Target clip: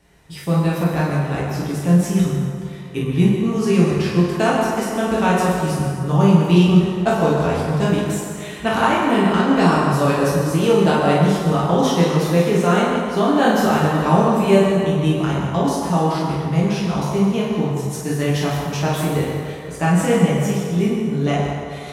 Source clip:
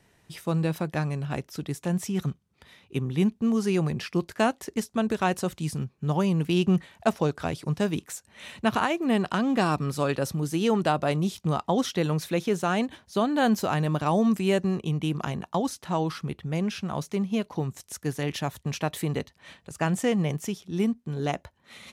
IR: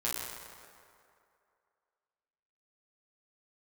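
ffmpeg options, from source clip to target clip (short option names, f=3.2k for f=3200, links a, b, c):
-filter_complex "[0:a]lowshelf=f=79:g=8[a];[1:a]atrim=start_sample=2205,asetrate=42777,aresample=44100[b];[a][b]afir=irnorm=-1:irlink=0,volume=3dB"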